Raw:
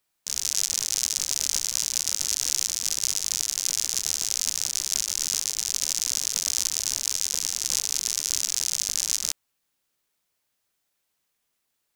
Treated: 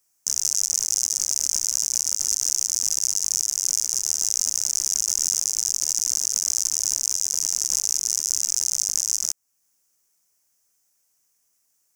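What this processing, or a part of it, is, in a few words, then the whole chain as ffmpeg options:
over-bright horn tweeter: -af "highshelf=frequency=4800:width_type=q:width=3:gain=7.5,alimiter=limit=-4.5dB:level=0:latency=1:release=359"

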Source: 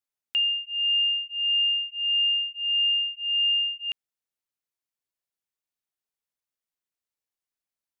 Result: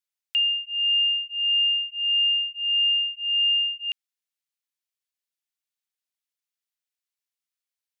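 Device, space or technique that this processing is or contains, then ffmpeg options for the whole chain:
filter by subtraction: -filter_complex "[0:a]asplit=2[link_01][link_02];[link_02]lowpass=2900,volume=-1[link_03];[link_01][link_03]amix=inputs=2:normalize=0"

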